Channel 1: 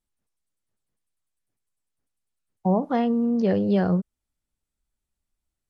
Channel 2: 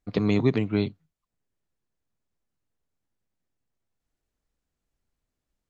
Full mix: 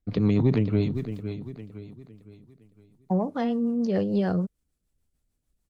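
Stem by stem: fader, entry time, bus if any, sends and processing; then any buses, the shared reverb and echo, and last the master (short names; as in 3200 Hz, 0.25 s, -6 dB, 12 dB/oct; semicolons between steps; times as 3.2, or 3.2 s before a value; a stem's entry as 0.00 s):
-1.5 dB, 0.45 s, no send, no echo send, high shelf 4700 Hz +9 dB
-2.5 dB, 0.00 s, no send, echo send -10.5 dB, low shelf 280 Hz +9.5 dB; sustainer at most 99 dB/s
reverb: off
echo: feedback echo 0.51 s, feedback 40%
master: rotary speaker horn 6.7 Hz; soft clip -10 dBFS, distortion -24 dB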